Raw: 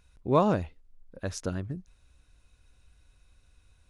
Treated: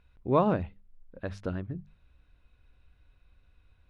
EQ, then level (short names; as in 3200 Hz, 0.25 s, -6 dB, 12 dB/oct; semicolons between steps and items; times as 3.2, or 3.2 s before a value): air absorption 470 m; high shelf 3000 Hz +10.5 dB; notches 50/100/150/200 Hz; 0.0 dB